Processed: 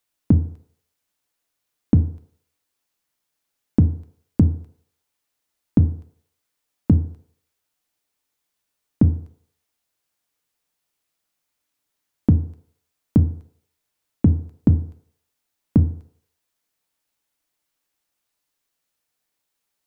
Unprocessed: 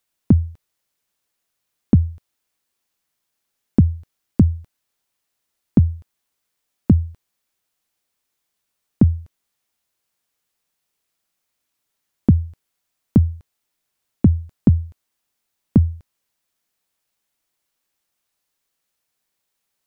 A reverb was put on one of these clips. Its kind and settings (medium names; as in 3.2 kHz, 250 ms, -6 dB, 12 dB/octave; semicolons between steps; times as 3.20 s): FDN reverb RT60 0.65 s, low-frequency decay 0.7×, high-frequency decay 0.4×, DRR 8.5 dB; trim -2 dB